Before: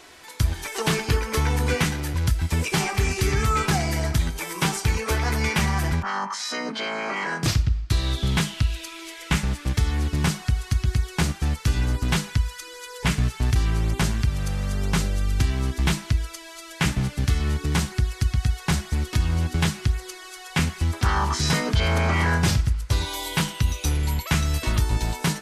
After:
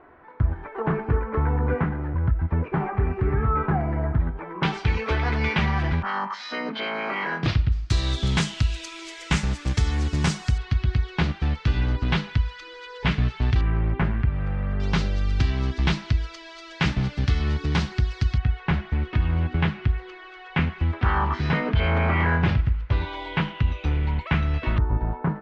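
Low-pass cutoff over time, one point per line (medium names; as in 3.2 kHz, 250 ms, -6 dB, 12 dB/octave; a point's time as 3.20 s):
low-pass 24 dB/octave
1.5 kHz
from 4.63 s 3.7 kHz
from 7.72 s 7.7 kHz
from 10.58 s 3.9 kHz
from 13.61 s 2.2 kHz
from 14.80 s 4.8 kHz
from 18.38 s 2.8 kHz
from 24.78 s 1.4 kHz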